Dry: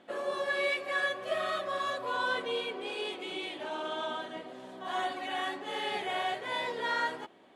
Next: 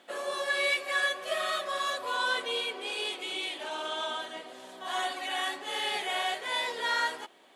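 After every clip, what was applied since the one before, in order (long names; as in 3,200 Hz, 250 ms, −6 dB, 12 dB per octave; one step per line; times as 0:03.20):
high-pass filter 530 Hz 6 dB per octave
high-shelf EQ 4,100 Hz +11.5 dB
level +1.5 dB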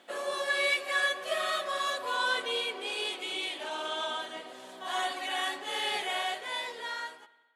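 fade-out on the ending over 1.57 s
spring reverb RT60 1.4 s, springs 55 ms, chirp 50 ms, DRR 18 dB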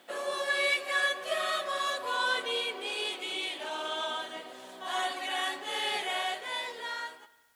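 background noise white −71 dBFS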